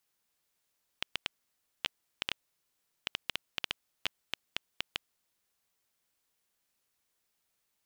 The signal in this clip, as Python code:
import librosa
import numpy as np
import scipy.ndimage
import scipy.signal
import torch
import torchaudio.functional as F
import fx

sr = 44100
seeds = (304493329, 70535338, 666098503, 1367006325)

y = fx.geiger_clicks(sr, seeds[0], length_s=4.69, per_s=4.5, level_db=-12.5)